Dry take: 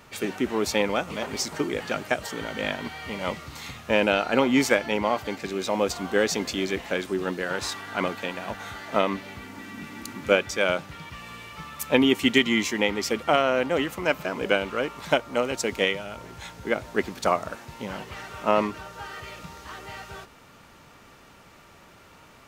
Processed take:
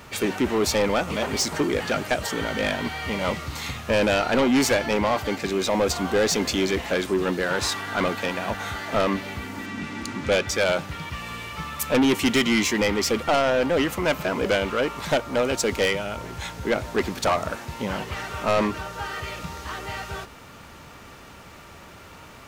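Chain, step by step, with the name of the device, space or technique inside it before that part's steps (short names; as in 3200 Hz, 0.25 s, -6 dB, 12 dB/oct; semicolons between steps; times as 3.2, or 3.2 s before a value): 9.66–10.48 LPF 7600 Hz 12 dB/oct; open-reel tape (soft clip -22 dBFS, distortion -7 dB; bell 73 Hz +5 dB 0.86 oct; white noise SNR 47 dB); gain +6.5 dB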